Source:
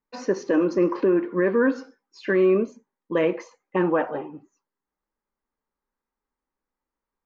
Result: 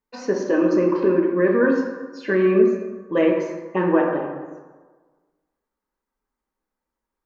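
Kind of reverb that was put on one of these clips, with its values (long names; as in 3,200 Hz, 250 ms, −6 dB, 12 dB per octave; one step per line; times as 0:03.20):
dense smooth reverb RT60 1.4 s, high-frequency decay 0.5×, DRR 1 dB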